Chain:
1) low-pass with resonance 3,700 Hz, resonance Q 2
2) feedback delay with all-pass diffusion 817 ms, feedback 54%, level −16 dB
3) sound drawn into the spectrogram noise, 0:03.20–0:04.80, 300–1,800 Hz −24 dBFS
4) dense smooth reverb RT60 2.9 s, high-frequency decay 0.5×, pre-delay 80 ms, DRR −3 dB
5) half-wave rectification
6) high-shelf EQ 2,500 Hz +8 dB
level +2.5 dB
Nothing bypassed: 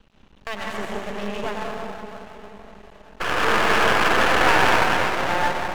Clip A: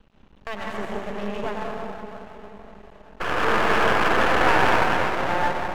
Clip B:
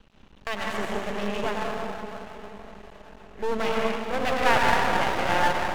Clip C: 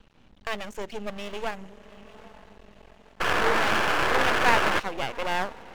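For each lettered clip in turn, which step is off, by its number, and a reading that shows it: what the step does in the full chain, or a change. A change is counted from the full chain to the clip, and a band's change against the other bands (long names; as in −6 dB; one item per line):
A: 6, 8 kHz band −6.5 dB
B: 3, change in integrated loudness −5.5 LU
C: 4, change in integrated loudness −5.0 LU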